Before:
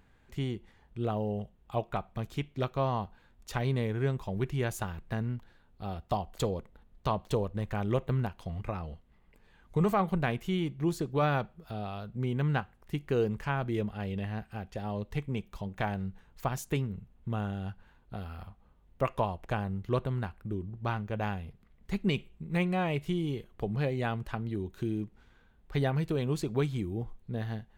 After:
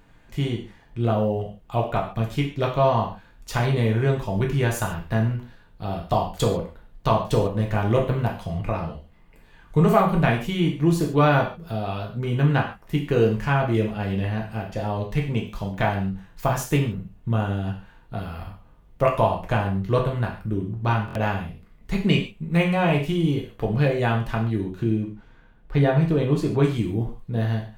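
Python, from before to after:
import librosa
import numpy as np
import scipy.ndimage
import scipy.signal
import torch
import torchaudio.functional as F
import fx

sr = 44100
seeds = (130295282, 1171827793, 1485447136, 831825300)

y = fx.high_shelf(x, sr, hz=3500.0, db=-10.0, at=(24.61, 26.64))
y = fx.rev_gated(y, sr, seeds[0], gate_ms=170, shape='falling', drr_db=-1.0)
y = fx.buffer_glitch(y, sr, at_s=(21.06,), block=1024, repeats=3)
y = y * 10.0 ** (6.5 / 20.0)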